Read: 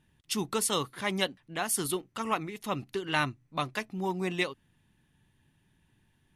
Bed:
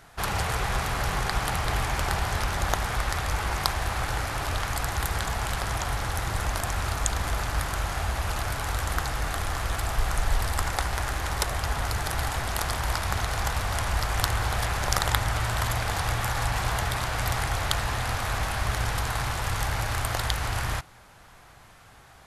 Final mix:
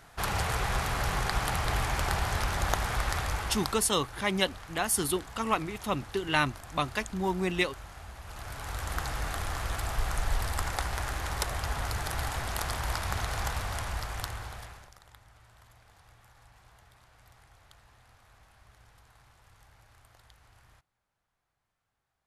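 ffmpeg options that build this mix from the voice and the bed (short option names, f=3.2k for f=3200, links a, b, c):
-filter_complex "[0:a]adelay=3200,volume=2dB[a];[1:a]volume=10dB,afade=t=out:st=3.18:d=0.7:silence=0.188365,afade=t=in:st=8.24:d=0.85:silence=0.237137,afade=t=out:st=13.44:d=1.48:silence=0.0446684[b];[a][b]amix=inputs=2:normalize=0"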